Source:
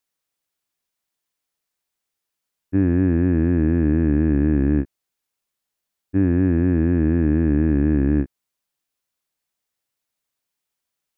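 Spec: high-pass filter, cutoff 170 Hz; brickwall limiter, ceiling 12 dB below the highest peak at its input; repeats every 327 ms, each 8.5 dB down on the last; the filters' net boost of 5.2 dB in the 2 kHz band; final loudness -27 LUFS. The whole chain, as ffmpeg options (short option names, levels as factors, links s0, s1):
-af "highpass=170,equalizer=f=2000:t=o:g=6.5,alimiter=limit=0.075:level=0:latency=1,aecho=1:1:327|654|981|1308:0.376|0.143|0.0543|0.0206,volume=1.68"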